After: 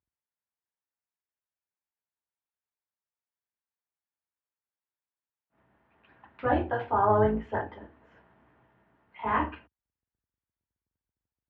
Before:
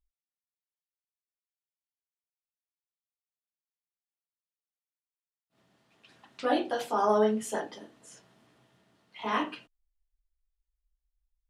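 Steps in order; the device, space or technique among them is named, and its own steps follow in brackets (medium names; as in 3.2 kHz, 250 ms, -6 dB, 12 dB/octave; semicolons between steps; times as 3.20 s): sub-octave bass pedal (octave divider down 2 oct, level +1 dB; cabinet simulation 72–2300 Hz, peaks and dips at 160 Hz -4 dB, 920 Hz +6 dB, 1.6 kHz +4 dB)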